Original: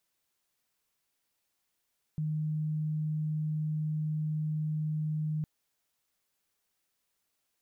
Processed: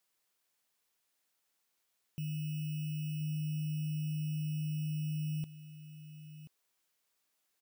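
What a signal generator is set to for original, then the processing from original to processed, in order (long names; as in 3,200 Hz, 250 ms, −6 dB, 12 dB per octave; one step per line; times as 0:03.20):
tone sine 154 Hz −29 dBFS 3.26 s
samples in bit-reversed order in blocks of 16 samples
low-shelf EQ 180 Hz −9 dB
single-tap delay 1,032 ms −13 dB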